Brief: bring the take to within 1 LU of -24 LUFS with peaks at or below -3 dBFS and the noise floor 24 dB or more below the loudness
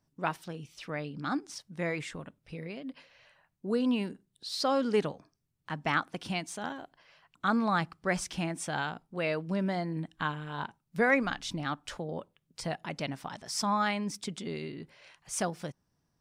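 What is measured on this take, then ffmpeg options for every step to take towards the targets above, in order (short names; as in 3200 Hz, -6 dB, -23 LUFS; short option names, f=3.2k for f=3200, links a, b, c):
loudness -33.0 LUFS; peak -13.5 dBFS; loudness target -24.0 LUFS
-> -af "volume=9dB"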